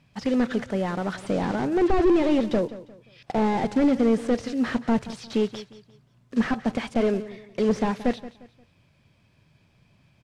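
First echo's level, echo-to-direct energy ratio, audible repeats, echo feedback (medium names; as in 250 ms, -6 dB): -16.0 dB, -15.5 dB, 2, 33%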